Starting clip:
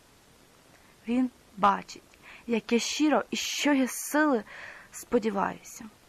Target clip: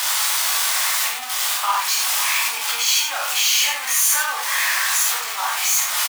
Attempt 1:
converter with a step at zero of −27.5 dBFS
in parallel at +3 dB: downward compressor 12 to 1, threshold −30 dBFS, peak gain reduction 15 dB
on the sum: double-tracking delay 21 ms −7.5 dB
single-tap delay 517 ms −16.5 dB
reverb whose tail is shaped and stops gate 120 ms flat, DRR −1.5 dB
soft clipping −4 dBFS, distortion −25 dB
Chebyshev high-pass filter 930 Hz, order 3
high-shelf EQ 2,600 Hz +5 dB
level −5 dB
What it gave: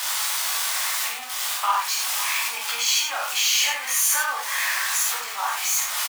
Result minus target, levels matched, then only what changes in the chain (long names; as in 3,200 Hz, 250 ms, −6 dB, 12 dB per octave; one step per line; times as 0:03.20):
converter with a step at zero: distortion −5 dB
change: converter with a step at zero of −20 dBFS